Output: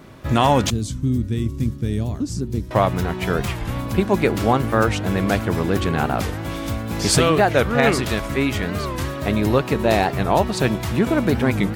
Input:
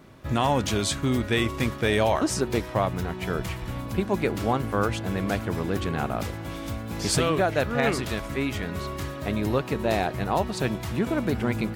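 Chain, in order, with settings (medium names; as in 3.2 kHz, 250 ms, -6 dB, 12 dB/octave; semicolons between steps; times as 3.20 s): 0.70–2.71 s: FFT filter 120 Hz 0 dB, 270 Hz -4 dB, 690 Hz -25 dB, 2.4 kHz -23 dB, 6.1 kHz -12 dB; warped record 45 rpm, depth 160 cents; trim +7 dB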